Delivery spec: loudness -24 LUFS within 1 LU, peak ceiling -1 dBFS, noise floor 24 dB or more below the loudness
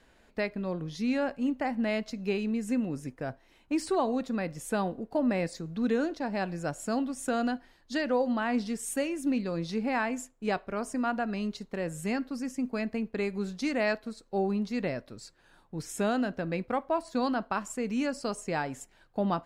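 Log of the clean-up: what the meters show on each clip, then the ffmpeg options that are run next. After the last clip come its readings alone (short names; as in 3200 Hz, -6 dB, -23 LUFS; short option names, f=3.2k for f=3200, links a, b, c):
loudness -31.5 LUFS; peak -17.5 dBFS; loudness target -24.0 LUFS
-> -af "volume=7.5dB"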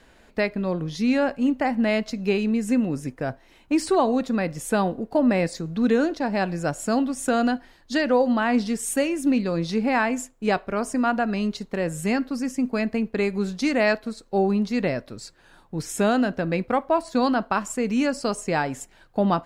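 loudness -24.0 LUFS; peak -10.0 dBFS; noise floor -55 dBFS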